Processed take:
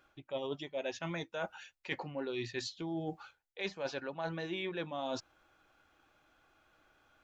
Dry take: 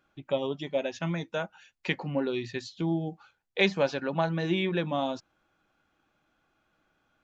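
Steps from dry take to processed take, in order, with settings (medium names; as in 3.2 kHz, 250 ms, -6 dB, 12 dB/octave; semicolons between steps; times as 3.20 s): peaking EQ 190 Hz -9.5 dB 1 oct; reverse; compression 16:1, threshold -39 dBFS, peak gain reduction 20.5 dB; reverse; trim +4.5 dB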